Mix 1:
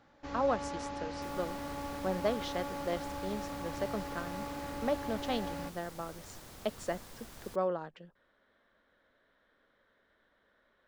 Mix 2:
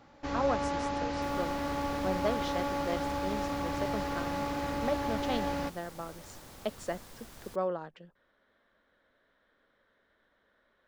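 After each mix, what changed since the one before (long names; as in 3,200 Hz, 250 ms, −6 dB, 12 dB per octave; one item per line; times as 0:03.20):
first sound +7.0 dB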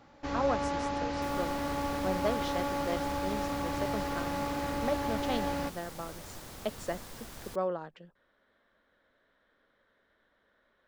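second sound +4.5 dB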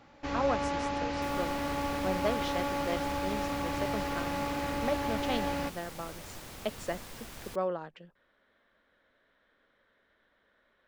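master: add parametric band 2,500 Hz +4 dB 0.82 octaves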